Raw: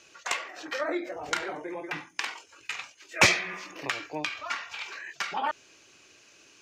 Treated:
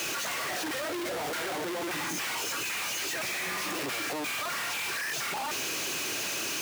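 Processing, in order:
sign of each sample alone
high-pass filter 110 Hz 12 dB per octave

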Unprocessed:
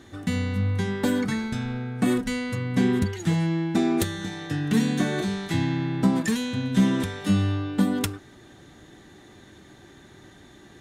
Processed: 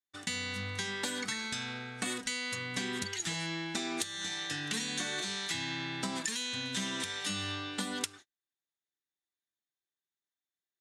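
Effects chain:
noise gate −38 dBFS, range −48 dB
meter weighting curve ITU-R 468
downward compressor 6 to 1, threshold −29 dBFS, peak gain reduction 13.5 dB
low-shelf EQ 120 Hz +10.5 dB
level −3.5 dB

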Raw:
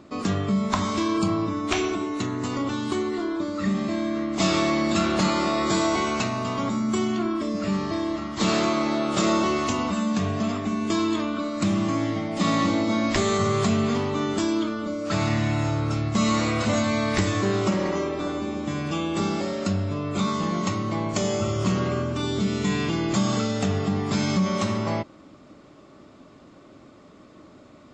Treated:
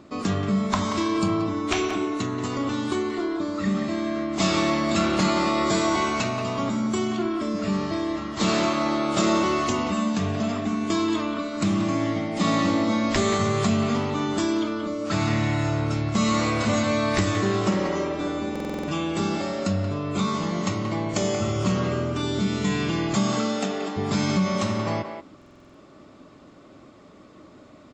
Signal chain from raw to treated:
0:23.15–0:23.96: high-pass filter 100 Hz → 330 Hz 24 dB per octave
far-end echo of a speakerphone 180 ms, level −7 dB
buffer that repeats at 0:18.51/0:25.37, samples 2,048, times 7

